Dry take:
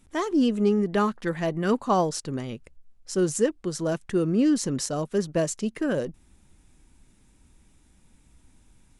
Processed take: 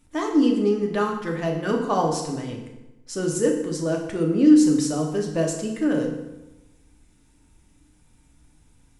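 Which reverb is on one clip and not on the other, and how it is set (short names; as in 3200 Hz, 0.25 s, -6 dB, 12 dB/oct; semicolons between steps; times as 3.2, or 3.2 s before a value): FDN reverb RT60 1 s, low-frequency decay 1.1×, high-frequency decay 0.8×, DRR 0 dB; gain -2 dB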